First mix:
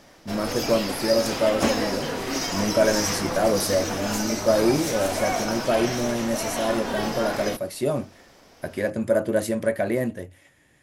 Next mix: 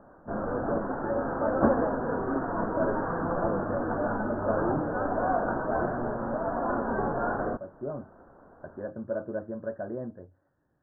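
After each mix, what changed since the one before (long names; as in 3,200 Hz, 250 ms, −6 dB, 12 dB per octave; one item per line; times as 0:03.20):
speech −11.0 dB
master: add Butterworth low-pass 1,600 Hz 96 dB per octave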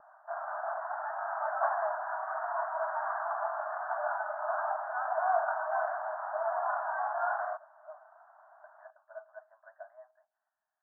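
speech −8.0 dB
master: add linear-phase brick-wall high-pass 600 Hz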